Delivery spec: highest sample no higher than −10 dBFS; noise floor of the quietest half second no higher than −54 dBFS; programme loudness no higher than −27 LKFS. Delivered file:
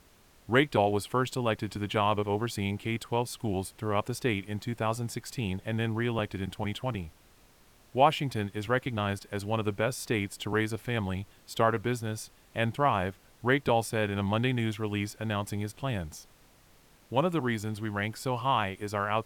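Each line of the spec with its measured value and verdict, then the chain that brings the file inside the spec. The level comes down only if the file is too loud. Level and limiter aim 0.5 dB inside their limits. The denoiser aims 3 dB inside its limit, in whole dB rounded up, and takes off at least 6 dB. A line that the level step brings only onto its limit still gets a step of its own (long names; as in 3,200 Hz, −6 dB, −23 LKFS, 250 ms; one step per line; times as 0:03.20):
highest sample −8.5 dBFS: out of spec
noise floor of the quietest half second −60 dBFS: in spec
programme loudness −30.5 LKFS: in spec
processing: brickwall limiter −10.5 dBFS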